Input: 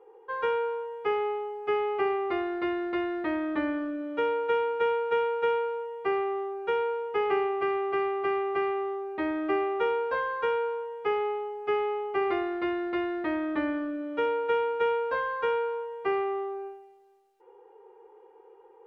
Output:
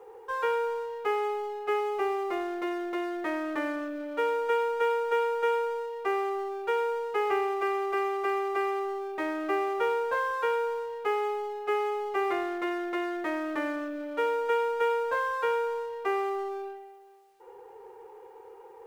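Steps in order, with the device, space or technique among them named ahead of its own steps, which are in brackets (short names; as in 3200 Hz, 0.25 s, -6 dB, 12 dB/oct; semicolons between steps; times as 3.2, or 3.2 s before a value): phone line with mismatched companding (BPF 390–3500 Hz; G.711 law mismatch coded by mu); 1.8–3.23 bell 1700 Hz -4 dB 1.4 oct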